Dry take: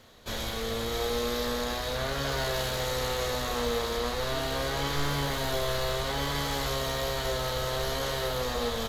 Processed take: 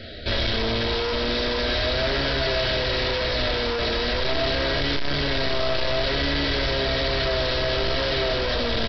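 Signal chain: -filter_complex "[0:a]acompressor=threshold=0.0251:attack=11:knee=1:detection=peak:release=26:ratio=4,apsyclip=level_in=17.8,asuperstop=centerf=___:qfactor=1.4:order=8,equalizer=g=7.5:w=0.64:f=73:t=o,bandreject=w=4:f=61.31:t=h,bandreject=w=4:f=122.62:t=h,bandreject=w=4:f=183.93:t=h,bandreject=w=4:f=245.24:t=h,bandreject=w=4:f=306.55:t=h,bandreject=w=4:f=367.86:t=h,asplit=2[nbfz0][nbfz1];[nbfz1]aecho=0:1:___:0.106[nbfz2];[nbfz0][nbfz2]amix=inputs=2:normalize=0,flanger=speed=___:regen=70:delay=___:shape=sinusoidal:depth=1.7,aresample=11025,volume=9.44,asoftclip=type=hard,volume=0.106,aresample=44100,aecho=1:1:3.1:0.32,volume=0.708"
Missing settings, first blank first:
990, 89, 1.5, 9.1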